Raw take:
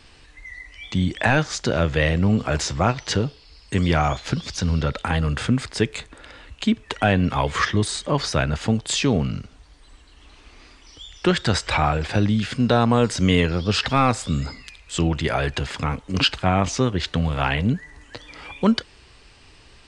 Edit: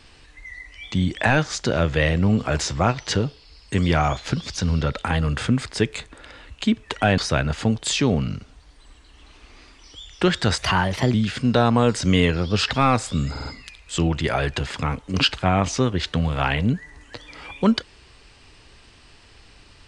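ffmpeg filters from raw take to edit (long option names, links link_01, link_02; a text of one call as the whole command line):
ffmpeg -i in.wav -filter_complex "[0:a]asplit=7[link_01][link_02][link_03][link_04][link_05][link_06][link_07];[link_01]atrim=end=7.182[link_08];[link_02]atrim=start=8.208:end=11.614[link_09];[link_03]atrim=start=11.61:end=12.29,asetpts=PTS-STARTPTS,asetrate=53802,aresample=44100,atrim=end_sample=24580,asetpts=PTS-STARTPTS[link_10];[link_04]atrim=start=12.286:end=14.512[link_11];[link_05]atrim=start=14.458:end=14.512[link_12];[link_06]atrim=start=14.458:end=14.512[link_13];[link_07]atrim=start=14.458[link_14];[link_08][link_09]acrossfade=duration=0.004:curve1=hsin:curve2=hsin[link_15];[link_15][link_10]acrossfade=duration=0.004:curve1=hsin:curve2=hsin[link_16];[link_16][link_11]acrossfade=duration=0.004:curve1=hsin:curve2=hsin[link_17];[link_17][link_12]acrossfade=duration=0.004:curve1=hsin:curve2=hsin[link_18];[link_18][link_13]acrossfade=duration=0.004:curve1=hsin:curve2=hsin[link_19];[link_19][link_14]acrossfade=duration=0.004:curve1=hsin:curve2=hsin" out.wav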